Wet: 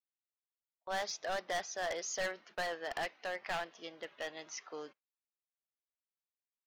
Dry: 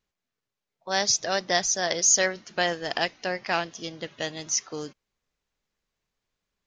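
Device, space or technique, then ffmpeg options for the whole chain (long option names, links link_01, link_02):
walkie-talkie: -af "highpass=510,lowpass=2700,asoftclip=type=hard:threshold=-26.5dB,agate=range=-18dB:threshold=-54dB:ratio=16:detection=peak,lowshelf=frequency=85:gain=10.5,volume=-5.5dB"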